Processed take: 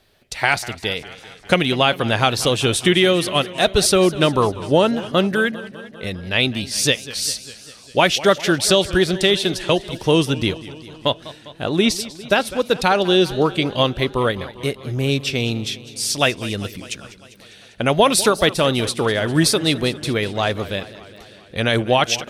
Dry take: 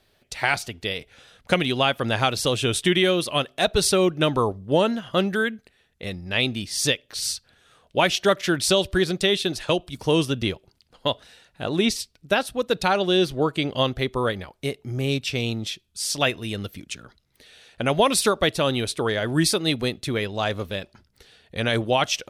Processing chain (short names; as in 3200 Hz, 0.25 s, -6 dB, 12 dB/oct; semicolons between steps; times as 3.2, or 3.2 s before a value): warbling echo 0.2 s, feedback 67%, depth 143 cents, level -17 dB; gain +4.5 dB